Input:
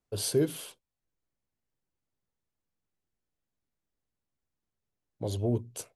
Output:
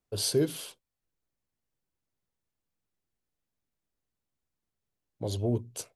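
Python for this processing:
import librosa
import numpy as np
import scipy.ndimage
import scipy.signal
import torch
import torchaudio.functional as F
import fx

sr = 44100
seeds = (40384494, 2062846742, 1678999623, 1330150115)

y = fx.dynamic_eq(x, sr, hz=4700.0, q=1.4, threshold_db=-51.0, ratio=4.0, max_db=5)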